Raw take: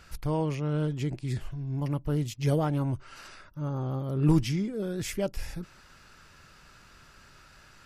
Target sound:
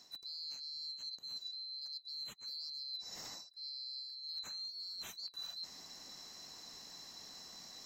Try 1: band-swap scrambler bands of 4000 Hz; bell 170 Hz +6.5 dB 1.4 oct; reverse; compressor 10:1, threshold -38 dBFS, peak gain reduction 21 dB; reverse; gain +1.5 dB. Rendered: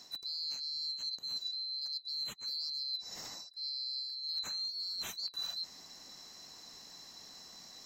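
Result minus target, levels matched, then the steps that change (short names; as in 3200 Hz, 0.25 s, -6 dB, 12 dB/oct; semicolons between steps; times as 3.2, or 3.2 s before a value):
compressor: peak gain reduction -6.5 dB
change: compressor 10:1, threshold -45 dBFS, peak gain reduction 27 dB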